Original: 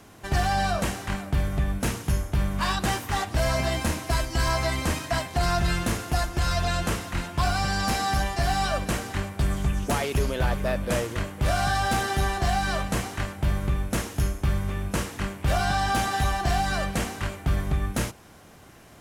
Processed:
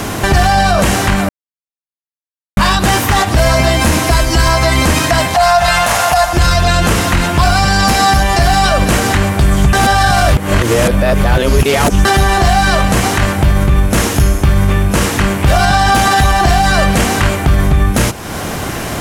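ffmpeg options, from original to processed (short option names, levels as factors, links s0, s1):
-filter_complex "[0:a]asettb=1/sr,asplit=3[s0][s1][s2];[s0]atrim=end=5.344[s3];[s1]atrim=start=5.34:end=6.33,asetpts=PTS-STARTPTS,afade=t=in:d=0.004:c=qsin,afade=t=out:st=0.986:d=0.004:c=qsin,lowshelf=f=500:t=q:w=3:g=-11.5[s4];[s2]atrim=start=6.326[s5];[s3][s4]acrossfade=d=0.004:c1=hsin:c2=qsin[s6];[s6][s5]acrossfade=d=0.004:c1=qsin:c2=hsin,asplit=5[s7][s8][s9][s10][s11];[s7]atrim=end=1.29,asetpts=PTS-STARTPTS,afade=t=out:st=1.286:d=0.004:c=hsin[s12];[s8]atrim=start=1.29:end=2.57,asetpts=PTS-STARTPTS,volume=0[s13];[s9]atrim=start=2.57:end=9.732,asetpts=PTS-STARTPTS,afade=t=in:d=0.004:c=hsin[s14];[s10]atrim=start=9.728:end=12.052,asetpts=PTS-STARTPTS,areverse[s15];[s11]atrim=start=12.048[s16];[s12][s13][s14]concat=n=3:v=0:a=1[s17];[s17][s15]acrossfade=d=0.004:c1=hsin:c2=hsin[s18];[s18][s16]acrossfade=d=0.004:c1=hsin:c2=hsin,acompressor=threshold=0.00631:ratio=2,alimiter=level_in=37.6:limit=0.891:release=50:level=0:latency=1,volume=0.891"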